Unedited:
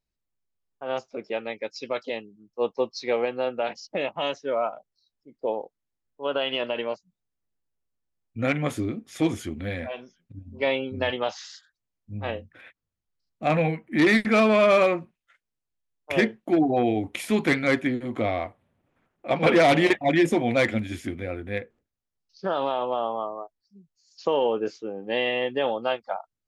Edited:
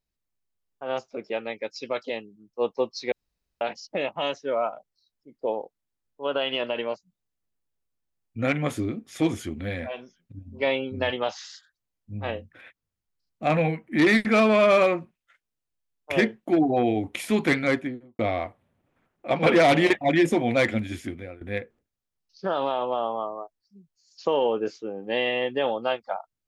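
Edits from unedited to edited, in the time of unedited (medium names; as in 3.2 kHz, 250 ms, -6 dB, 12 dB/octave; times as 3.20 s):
3.12–3.61 s: room tone
17.60–18.19 s: studio fade out
20.84–21.41 s: fade out equal-power, to -17.5 dB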